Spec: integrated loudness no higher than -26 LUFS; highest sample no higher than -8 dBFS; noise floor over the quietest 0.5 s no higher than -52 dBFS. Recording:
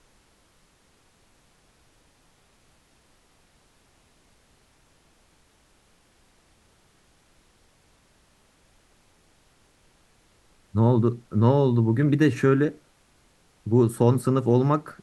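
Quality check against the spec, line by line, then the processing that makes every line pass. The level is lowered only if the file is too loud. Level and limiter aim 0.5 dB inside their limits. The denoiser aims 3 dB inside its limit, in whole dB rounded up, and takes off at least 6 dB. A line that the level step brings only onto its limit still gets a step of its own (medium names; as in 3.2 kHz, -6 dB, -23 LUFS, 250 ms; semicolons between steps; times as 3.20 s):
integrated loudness -22.0 LUFS: fail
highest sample -6.0 dBFS: fail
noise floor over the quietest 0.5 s -62 dBFS: pass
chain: trim -4.5 dB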